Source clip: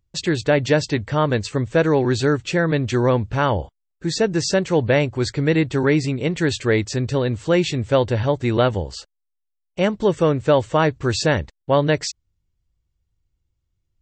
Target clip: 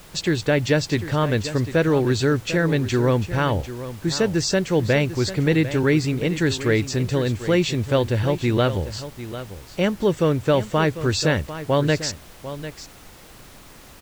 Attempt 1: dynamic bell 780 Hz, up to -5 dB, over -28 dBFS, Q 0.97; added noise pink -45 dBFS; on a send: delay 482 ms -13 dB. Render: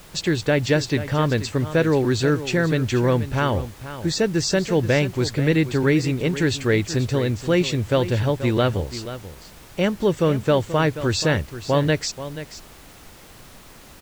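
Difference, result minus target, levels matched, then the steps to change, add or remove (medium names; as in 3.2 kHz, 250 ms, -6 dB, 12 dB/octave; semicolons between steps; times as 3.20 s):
echo 265 ms early
change: delay 747 ms -13 dB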